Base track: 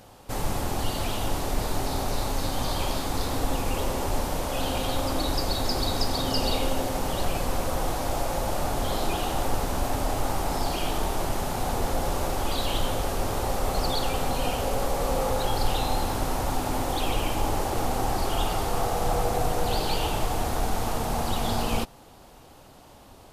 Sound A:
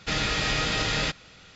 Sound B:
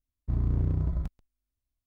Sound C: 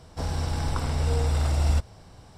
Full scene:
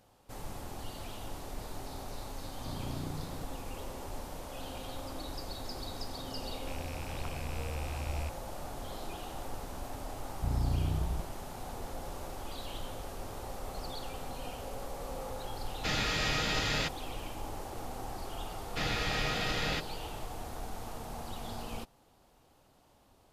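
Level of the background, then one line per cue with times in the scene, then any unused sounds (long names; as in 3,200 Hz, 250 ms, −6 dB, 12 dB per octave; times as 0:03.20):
base track −14.5 dB
0:02.36: mix in B −5.5 dB + high-pass filter 160 Hz
0:06.49: mix in C −15 dB + loose part that buzzes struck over −31 dBFS, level −20 dBFS
0:10.14: mix in B −4.5 dB
0:15.77: mix in A −5.5 dB
0:18.69: mix in A −6.5 dB + high-frequency loss of the air 56 metres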